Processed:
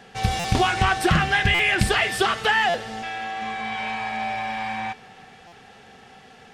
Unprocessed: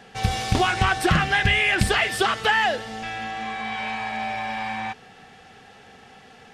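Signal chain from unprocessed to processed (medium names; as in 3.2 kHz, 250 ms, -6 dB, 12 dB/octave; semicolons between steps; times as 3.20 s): 3.02–3.42 s: tone controls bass -8 dB, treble -2 dB; two-slope reverb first 0.26 s, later 4 s, DRR 14 dB; buffer glitch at 0.39/1.54/2.69/5.47 s, samples 256, times 8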